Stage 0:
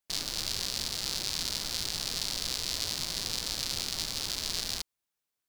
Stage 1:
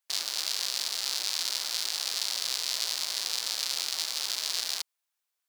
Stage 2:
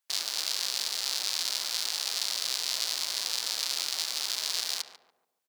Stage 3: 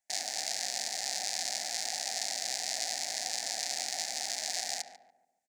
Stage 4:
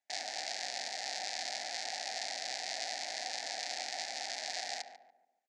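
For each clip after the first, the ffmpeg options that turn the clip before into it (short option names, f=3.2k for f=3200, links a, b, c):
-af "highpass=680,volume=2.5dB"
-filter_complex "[0:a]asplit=2[a][b];[b]adelay=143,lowpass=f=1.1k:p=1,volume=-7dB,asplit=2[c][d];[d]adelay=143,lowpass=f=1.1k:p=1,volume=0.44,asplit=2[e][f];[f]adelay=143,lowpass=f=1.1k:p=1,volume=0.44,asplit=2[g][h];[h]adelay=143,lowpass=f=1.1k:p=1,volume=0.44,asplit=2[i][j];[j]adelay=143,lowpass=f=1.1k:p=1,volume=0.44[k];[a][c][e][g][i][k]amix=inputs=6:normalize=0"
-af "firequalizer=gain_entry='entry(140,0);entry(230,6);entry(410,-8);entry(750,13);entry(1100,-24);entry(1800,4);entry(3000,-11);entry(6900,2);entry(13000,-12)':delay=0.05:min_phase=1"
-af "highpass=270,lowpass=4.2k"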